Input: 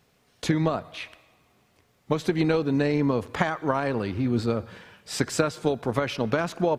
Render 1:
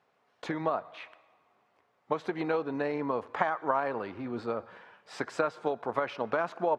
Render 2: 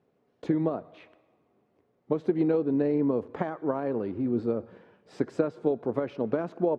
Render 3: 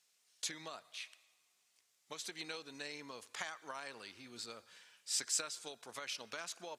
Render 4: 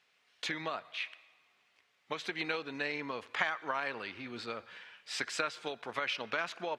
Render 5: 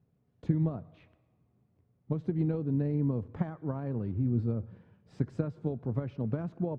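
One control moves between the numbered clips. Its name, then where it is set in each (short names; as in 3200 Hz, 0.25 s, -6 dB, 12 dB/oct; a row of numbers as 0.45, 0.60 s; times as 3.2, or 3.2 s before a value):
band-pass, frequency: 940, 370, 7700, 2500, 120 Hz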